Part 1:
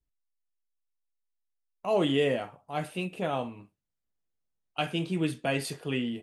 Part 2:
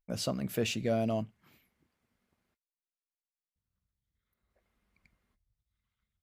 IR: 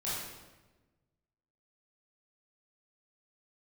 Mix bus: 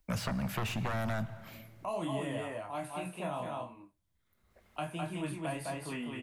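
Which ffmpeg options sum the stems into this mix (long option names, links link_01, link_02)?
-filter_complex "[0:a]flanger=delay=22.5:depth=6.2:speed=1.4,equalizer=frequency=315:width_type=o:width=0.33:gain=11,equalizer=frequency=630:width_type=o:width=0.33:gain=9,equalizer=frequency=1000:width_type=o:width=0.33:gain=11,equalizer=frequency=3150:width_type=o:width=0.33:gain=-4,equalizer=frequency=5000:width_type=o:width=0.33:gain=-4,equalizer=frequency=10000:width_type=o:width=0.33:gain=8,volume=-1dB,asplit=3[link_01][link_02][link_03];[link_02]volume=-3.5dB[link_04];[1:a]aeval=exprs='0.119*sin(PI/2*3.55*val(0)/0.119)':channel_layout=same,volume=-2.5dB,asplit=2[link_05][link_06];[link_06]volume=-19.5dB[link_07];[link_03]apad=whole_len=274548[link_08];[link_05][link_08]sidechaincompress=threshold=-50dB:ratio=8:attack=16:release=726[link_09];[2:a]atrim=start_sample=2205[link_10];[link_07][link_10]afir=irnorm=-1:irlink=0[link_11];[link_04]aecho=0:1:206:1[link_12];[link_01][link_09][link_11][link_12]amix=inputs=4:normalize=0,acrossover=split=180|680|2300|7200[link_13][link_14][link_15][link_16][link_17];[link_13]acompressor=threshold=-33dB:ratio=4[link_18];[link_14]acompressor=threshold=-51dB:ratio=4[link_19];[link_15]acompressor=threshold=-38dB:ratio=4[link_20];[link_16]acompressor=threshold=-53dB:ratio=4[link_21];[link_17]acompressor=threshold=-52dB:ratio=4[link_22];[link_18][link_19][link_20][link_21][link_22]amix=inputs=5:normalize=0"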